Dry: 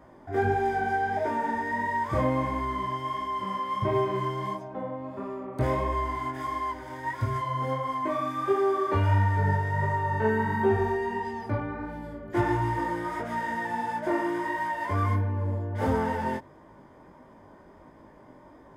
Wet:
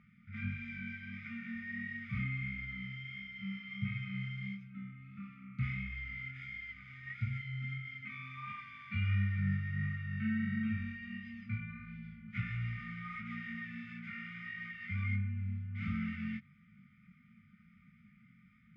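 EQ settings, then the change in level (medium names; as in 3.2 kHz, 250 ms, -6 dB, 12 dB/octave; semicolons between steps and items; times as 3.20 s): vowel filter u; brick-wall FIR band-stop 220–1200 Hz; distance through air 160 m; +16.5 dB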